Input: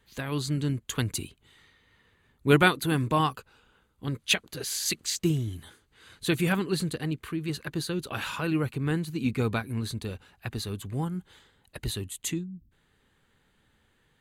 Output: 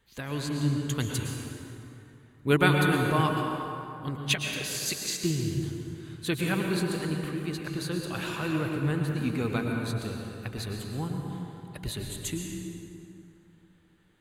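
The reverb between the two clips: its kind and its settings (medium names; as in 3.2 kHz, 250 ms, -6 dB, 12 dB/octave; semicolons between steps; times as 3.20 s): plate-style reverb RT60 2.9 s, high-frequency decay 0.55×, pre-delay 95 ms, DRR 1 dB; trim -3 dB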